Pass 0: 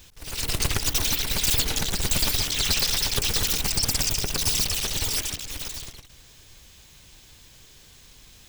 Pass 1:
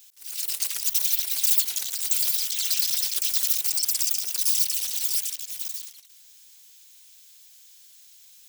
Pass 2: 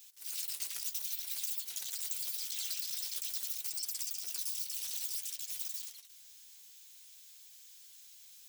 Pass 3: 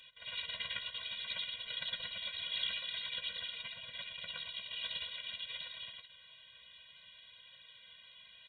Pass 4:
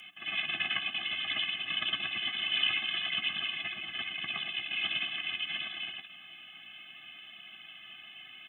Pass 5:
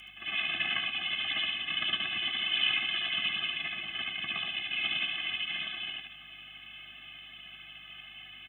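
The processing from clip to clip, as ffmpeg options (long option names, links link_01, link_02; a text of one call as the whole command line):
ffmpeg -i in.wav -af "aderivative" out.wav
ffmpeg -i in.wav -af "acompressor=threshold=-31dB:ratio=6,flanger=delay=7.5:depth=9.3:regen=-34:speed=0.53:shape=sinusoidal" out.wav
ffmpeg -i in.wav -af "aresample=8000,acrusher=bits=5:mode=log:mix=0:aa=0.000001,aresample=44100,afftfilt=real='re*eq(mod(floor(b*sr/1024/230),2),0)':imag='im*eq(mod(floor(b*sr/1024/230),2),0)':win_size=1024:overlap=0.75,volume=15.5dB" out.wav
ffmpeg -i in.wav -af "afreqshift=-310,aexciter=amount=1.3:drive=2.5:freq=2200,volume=6.5dB" out.wav
ffmpeg -i in.wav -af "aeval=exprs='val(0)+0.000562*(sin(2*PI*50*n/s)+sin(2*PI*2*50*n/s)/2+sin(2*PI*3*50*n/s)/3+sin(2*PI*4*50*n/s)/4+sin(2*PI*5*50*n/s)/5)':channel_layout=same,aecho=1:1:73:0.596" out.wav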